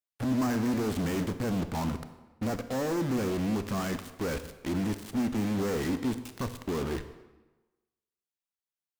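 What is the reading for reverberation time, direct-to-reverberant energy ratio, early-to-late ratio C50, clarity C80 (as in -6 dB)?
1.1 s, 10.0 dB, 11.5 dB, 13.5 dB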